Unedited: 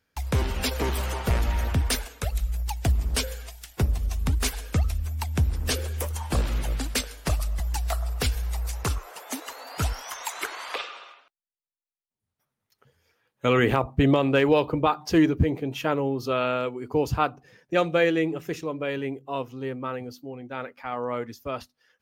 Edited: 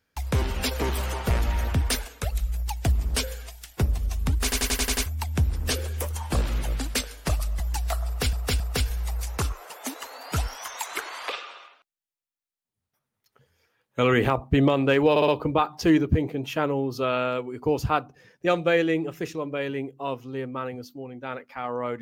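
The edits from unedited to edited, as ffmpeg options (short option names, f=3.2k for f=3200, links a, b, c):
-filter_complex "[0:a]asplit=13[a][b][c][d][e][f][g][h][i][j][k][l][m];[a]atrim=end=4.522[n];[b]atrim=start=4.428:end=4.522[o];[c]atrim=start=4.428:end=4.522[p];[d]atrim=start=4.428:end=4.522[q];[e]atrim=start=4.428:end=4.522[r];[f]atrim=start=4.428:end=4.522[s];[g]atrim=start=4.428:end=4.522[t];[h]atrim=start=5.058:end=8.332[u];[i]atrim=start=8.058:end=8.332[v];[j]atrim=start=8.058:end=14.622[w];[k]atrim=start=14.558:end=14.622[x];[l]atrim=start=14.558:end=14.622[y];[m]atrim=start=14.558[z];[n][o]acrossfade=d=0.004:c1=hsin:c2=hsin[aa];[aa][p]acrossfade=d=0.004:c1=hsin:c2=hsin[ab];[ab][q]acrossfade=d=0.004:c1=hsin:c2=hsin[ac];[ac][r]acrossfade=d=0.004:c1=hsin:c2=hsin[ad];[ad][s]acrossfade=d=0.004:c1=hsin:c2=hsin[ae];[ae][t]acrossfade=d=0.004:c1=hsin:c2=hsin[af];[af][u]acrossfade=d=0.004:c1=hsin:c2=hsin[ag];[ag][v]acrossfade=d=0.004:c1=hsin:c2=hsin[ah];[ah][w]acrossfade=d=0.004:c1=hsin:c2=hsin[ai];[ai][x]acrossfade=d=0.004:c1=hsin:c2=hsin[aj];[aj][y]acrossfade=d=0.004:c1=hsin:c2=hsin[ak];[ak][z]acrossfade=d=0.004:c1=hsin:c2=hsin"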